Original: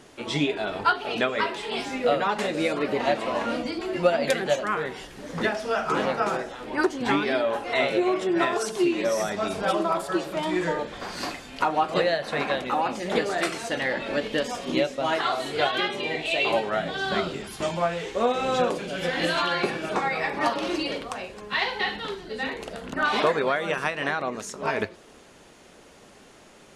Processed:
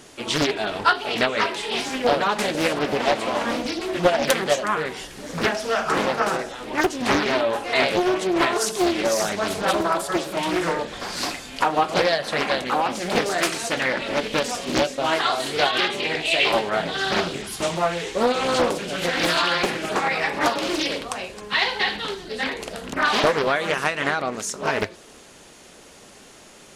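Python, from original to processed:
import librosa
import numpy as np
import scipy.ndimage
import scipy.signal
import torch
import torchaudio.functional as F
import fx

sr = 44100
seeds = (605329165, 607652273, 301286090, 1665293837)

y = fx.high_shelf(x, sr, hz=4000.0, db=9.5)
y = fx.doppler_dist(y, sr, depth_ms=0.79)
y = F.gain(torch.from_numpy(y), 2.5).numpy()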